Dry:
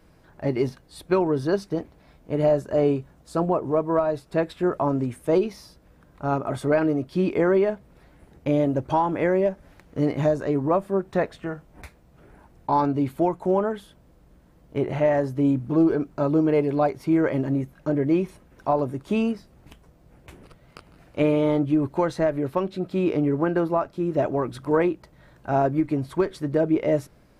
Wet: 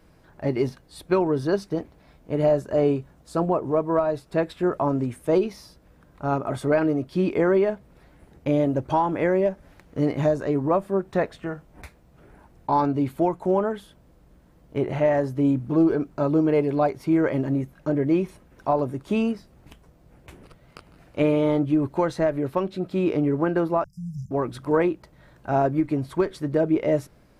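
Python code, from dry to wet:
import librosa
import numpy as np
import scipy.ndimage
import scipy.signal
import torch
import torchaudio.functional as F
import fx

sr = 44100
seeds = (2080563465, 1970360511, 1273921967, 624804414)

y = fx.brickwall_bandstop(x, sr, low_hz=190.0, high_hz=4800.0, at=(23.84, 24.31))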